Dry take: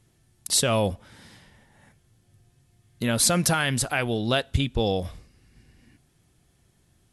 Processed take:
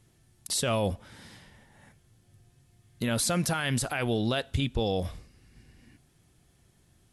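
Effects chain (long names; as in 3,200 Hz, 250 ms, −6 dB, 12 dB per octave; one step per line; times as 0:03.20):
brickwall limiter −18.5 dBFS, peak gain reduction 9.5 dB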